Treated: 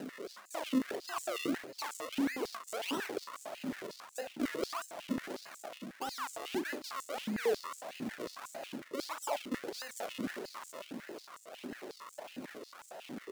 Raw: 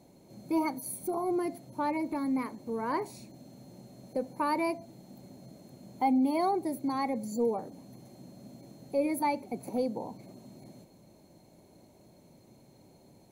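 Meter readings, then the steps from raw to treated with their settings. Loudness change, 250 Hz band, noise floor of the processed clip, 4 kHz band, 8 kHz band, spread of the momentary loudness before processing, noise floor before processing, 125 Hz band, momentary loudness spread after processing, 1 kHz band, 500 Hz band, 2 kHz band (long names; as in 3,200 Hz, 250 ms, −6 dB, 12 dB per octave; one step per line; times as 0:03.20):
−7.5 dB, −6.5 dB, −57 dBFS, +7.5 dB, +1.0 dB, 22 LU, −59 dBFS, −5.5 dB, 12 LU, −9.0 dB, −5.0 dB, +2.0 dB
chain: parametric band 2,300 Hz +14.5 dB 0.59 octaves
reversed playback
downward compressor 12 to 1, threshold −39 dBFS, peak gain reduction 18.5 dB
reversed playback
brickwall limiter −39 dBFS, peak gain reduction 9 dB
upward compression, threshold −50 dBFS
sample-and-hold swept by an LFO 38×, swing 100% 1.6 Hz
flutter between parallel walls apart 6.6 metres, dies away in 0.2 s
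high-pass on a step sequencer 11 Hz 250–7,400 Hz
level +7.5 dB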